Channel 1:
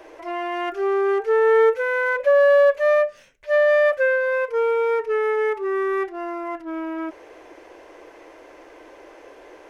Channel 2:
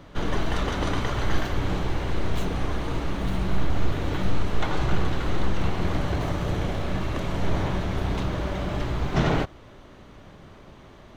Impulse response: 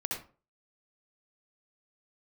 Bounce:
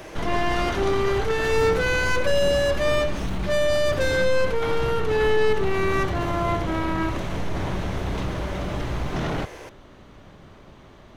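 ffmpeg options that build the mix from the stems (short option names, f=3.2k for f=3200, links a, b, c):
-filter_complex "[0:a]highshelf=f=2.8k:g=11.5,aeval=exprs='(tanh(17.8*val(0)+0.4)-tanh(0.4))/17.8':c=same,volume=1dB,asplit=2[a][b];[b]volume=-8dB[c];[1:a]alimiter=limit=-18.5dB:level=0:latency=1:release=11,volume=0dB[d];[2:a]atrim=start_sample=2205[e];[c][e]afir=irnorm=-1:irlink=0[f];[a][d][f]amix=inputs=3:normalize=0"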